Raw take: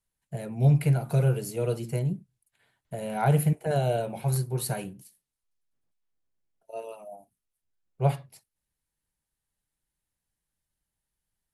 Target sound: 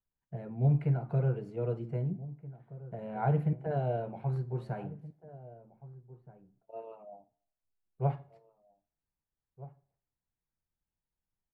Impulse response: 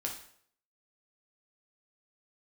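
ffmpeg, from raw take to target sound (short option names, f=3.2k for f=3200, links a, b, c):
-filter_complex "[0:a]lowpass=1.4k,equalizer=f=570:t=o:w=0.23:g=-3,asplit=2[a][b];[b]adelay=1574,volume=-17dB,highshelf=f=4k:g=-35.4[c];[a][c]amix=inputs=2:normalize=0,asplit=2[d][e];[1:a]atrim=start_sample=2205[f];[e][f]afir=irnorm=-1:irlink=0,volume=-14.5dB[g];[d][g]amix=inputs=2:normalize=0,volume=-6.5dB"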